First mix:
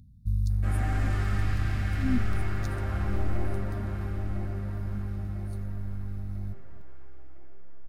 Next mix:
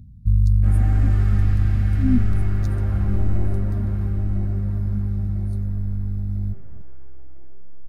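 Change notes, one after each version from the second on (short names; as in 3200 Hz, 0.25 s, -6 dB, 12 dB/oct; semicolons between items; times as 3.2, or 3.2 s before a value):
background -4.0 dB; master: add low shelf 500 Hz +10.5 dB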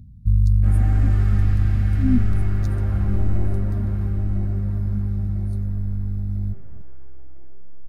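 none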